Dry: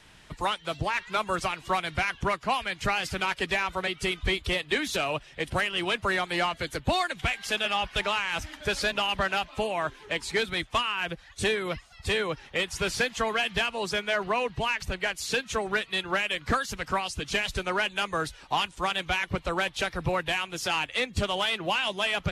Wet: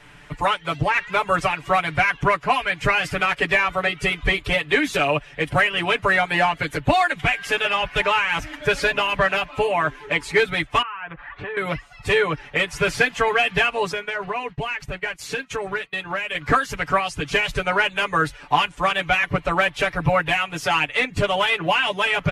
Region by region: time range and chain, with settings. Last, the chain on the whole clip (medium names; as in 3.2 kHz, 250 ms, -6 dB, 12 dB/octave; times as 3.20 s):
10.82–11.57 s: low-pass 2.9 kHz 24 dB/octave + peaking EQ 1.1 kHz +12.5 dB 1.4 oct + compression, threshold -38 dBFS
13.92–16.35 s: expander -34 dBFS + compression 3:1, threshold -32 dBFS
whole clip: resonant high shelf 3 kHz -6 dB, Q 1.5; comb 6.9 ms, depth 93%; trim +5 dB